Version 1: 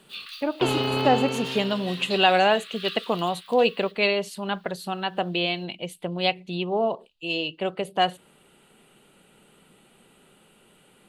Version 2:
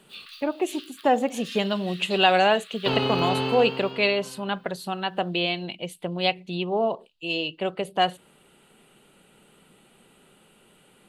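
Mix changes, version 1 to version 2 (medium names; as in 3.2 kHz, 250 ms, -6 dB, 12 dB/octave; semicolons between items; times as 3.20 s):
first sound -4.5 dB; second sound: entry +2.25 s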